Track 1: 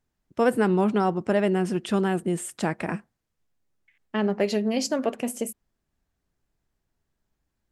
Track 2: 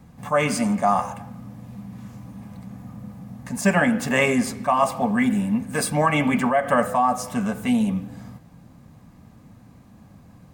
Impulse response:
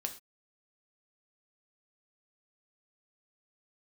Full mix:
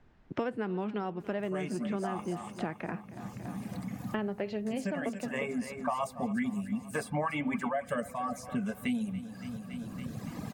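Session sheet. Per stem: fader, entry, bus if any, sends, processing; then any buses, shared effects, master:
-13.0 dB, 0.00 s, no send, echo send -21.5 dB, low-pass 2.5 kHz 12 dB/octave
-5.5 dB, 1.20 s, no send, echo send -19.5 dB, reverb removal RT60 2 s; rotary cabinet horn 0.6 Hz; auto duck -10 dB, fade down 0.90 s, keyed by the first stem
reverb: none
echo: feedback delay 282 ms, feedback 49%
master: three bands compressed up and down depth 100%

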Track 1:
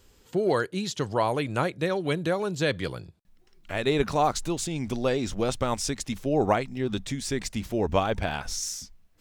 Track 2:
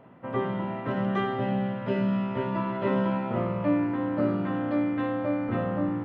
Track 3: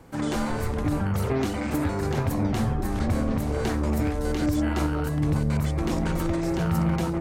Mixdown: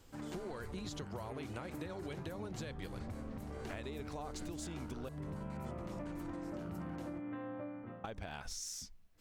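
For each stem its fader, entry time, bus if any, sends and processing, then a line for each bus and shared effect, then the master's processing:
-5.0 dB, 0.00 s, muted 5.09–8.04 s, bus A, no send, none
-3.0 dB, 2.35 s, bus A, no send, low-pass 3.1 kHz; auto duck -22 dB, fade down 0.70 s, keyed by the first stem
-16.0 dB, 0.00 s, no bus, no send, none
bus A: 0.0 dB, compression, threshold -36 dBFS, peak gain reduction 12.5 dB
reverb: none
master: compression, threshold -40 dBFS, peak gain reduction 9 dB

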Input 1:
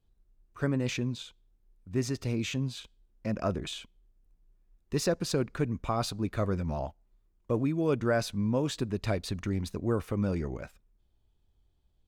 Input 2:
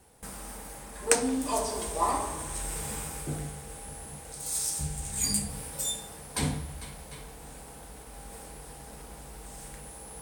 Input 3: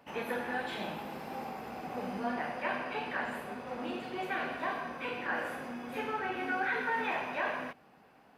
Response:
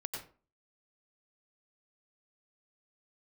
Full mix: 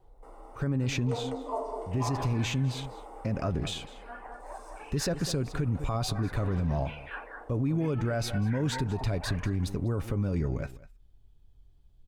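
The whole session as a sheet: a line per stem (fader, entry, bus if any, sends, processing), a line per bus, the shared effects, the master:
+1.5 dB, 0.00 s, no send, echo send -18.5 dB, bass shelf 160 Hz +11 dB; comb 7.2 ms, depth 30%
-2.5 dB, 0.00 s, no send, echo send -9.5 dB, Savitzky-Golay filter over 65 samples; steep high-pass 300 Hz 36 dB/octave
-10.5 dB, 1.85 s, no send, echo send -5 dB, frequency weighting A; reverb removal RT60 1.7 s; LFO low-pass sine 0.67 Hz 760–4800 Hz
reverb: none
echo: delay 200 ms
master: peak limiter -20.5 dBFS, peak gain reduction 11 dB

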